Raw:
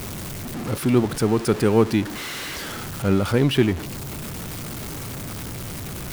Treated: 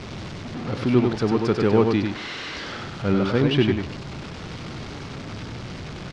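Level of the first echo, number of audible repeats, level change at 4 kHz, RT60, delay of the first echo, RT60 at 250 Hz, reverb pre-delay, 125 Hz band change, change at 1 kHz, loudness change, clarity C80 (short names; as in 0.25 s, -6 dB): -4.5 dB, 1, -0.5 dB, none, 97 ms, none, none, -1.0 dB, 0.0 dB, +1.0 dB, none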